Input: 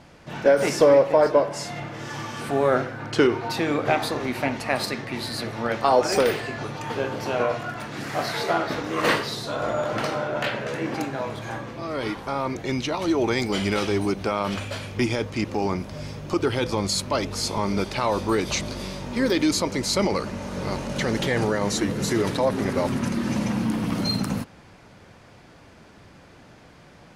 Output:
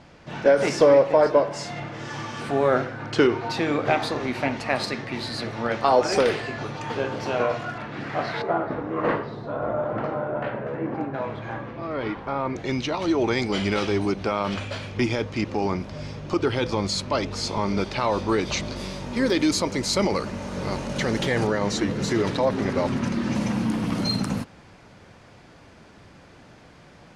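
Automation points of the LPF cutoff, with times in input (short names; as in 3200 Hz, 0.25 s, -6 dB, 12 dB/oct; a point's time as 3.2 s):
6800 Hz
from 7.78 s 3000 Hz
from 8.42 s 1200 Hz
from 11.14 s 2500 Hz
from 12.56 s 6000 Hz
from 18.76 s 10000 Hz
from 21.47 s 6100 Hz
from 23.35 s 10000 Hz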